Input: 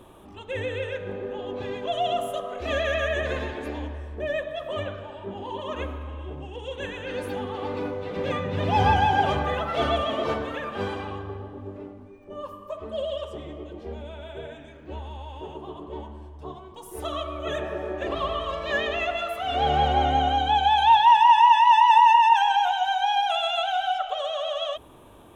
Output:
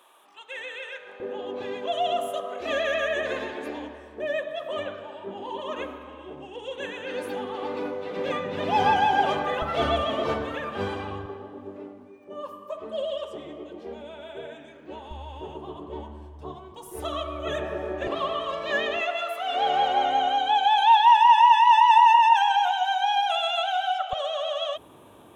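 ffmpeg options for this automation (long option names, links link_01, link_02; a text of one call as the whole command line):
ffmpeg -i in.wav -af "asetnsamples=nb_out_samples=441:pad=0,asendcmd='1.2 highpass f 230;9.62 highpass f 57;11.26 highpass f 200;15.11 highpass f 54;18.07 highpass f 170;19.01 highpass f 430;24.13 highpass f 110',highpass=990" out.wav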